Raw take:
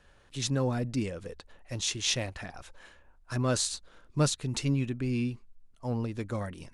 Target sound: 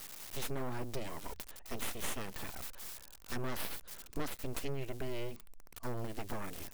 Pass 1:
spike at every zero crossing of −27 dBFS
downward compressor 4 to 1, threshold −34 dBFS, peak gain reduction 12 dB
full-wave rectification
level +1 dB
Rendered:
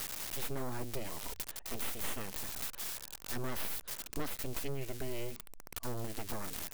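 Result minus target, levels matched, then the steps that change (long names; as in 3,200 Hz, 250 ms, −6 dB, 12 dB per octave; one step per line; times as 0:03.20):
spike at every zero crossing: distortion +9 dB
change: spike at every zero crossing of −36 dBFS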